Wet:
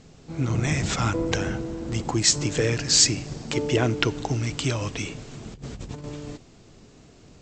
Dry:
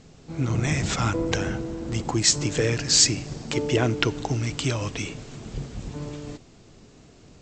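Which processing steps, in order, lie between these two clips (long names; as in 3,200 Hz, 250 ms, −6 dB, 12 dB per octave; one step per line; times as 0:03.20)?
0:05.54–0:06.04: compressor whose output falls as the input rises −36 dBFS, ratio −0.5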